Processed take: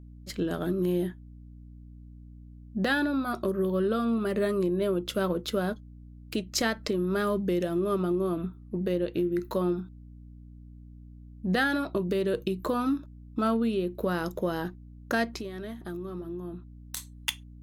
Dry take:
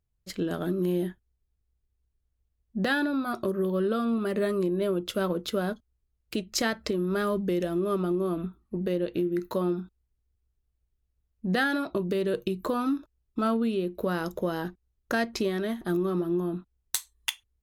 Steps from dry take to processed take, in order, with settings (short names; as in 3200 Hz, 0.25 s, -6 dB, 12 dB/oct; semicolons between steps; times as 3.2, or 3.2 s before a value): 15.28–16.97 compressor 3:1, threshold -38 dBFS, peak gain reduction 11.5 dB; hum 60 Hz, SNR 17 dB